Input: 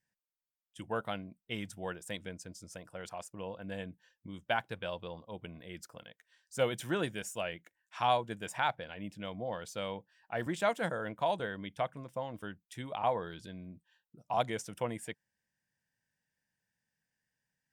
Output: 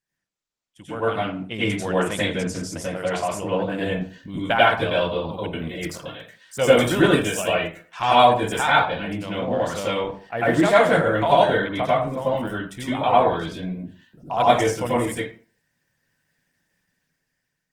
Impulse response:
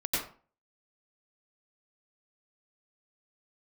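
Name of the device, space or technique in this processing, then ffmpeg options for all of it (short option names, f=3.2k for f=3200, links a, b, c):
speakerphone in a meeting room: -filter_complex "[1:a]atrim=start_sample=2205[a];[0:a][a]afir=irnorm=-1:irlink=0,dynaudnorm=f=400:g=7:m=14dB,volume=-1dB" -ar 48000 -c:a libopus -b:a 16k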